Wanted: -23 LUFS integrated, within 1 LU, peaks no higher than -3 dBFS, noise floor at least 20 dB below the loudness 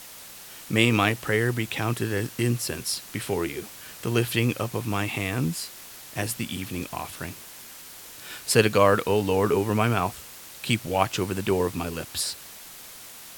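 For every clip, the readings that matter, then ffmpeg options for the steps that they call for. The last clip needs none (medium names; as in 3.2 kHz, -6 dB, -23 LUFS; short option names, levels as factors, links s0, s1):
noise floor -44 dBFS; noise floor target -46 dBFS; loudness -25.5 LUFS; peak level -2.5 dBFS; loudness target -23.0 LUFS
-> -af "afftdn=nr=6:nf=-44"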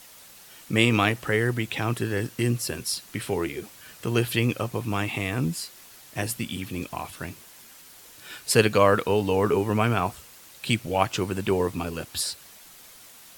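noise floor -49 dBFS; loudness -25.5 LUFS; peak level -3.0 dBFS; loudness target -23.0 LUFS
-> -af "volume=1.33,alimiter=limit=0.708:level=0:latency=1"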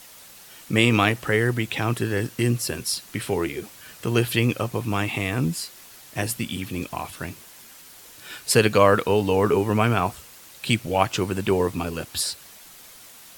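loudness -23.5 LUFS; peak level -3.0 dBFS; noise floor -47 dBFS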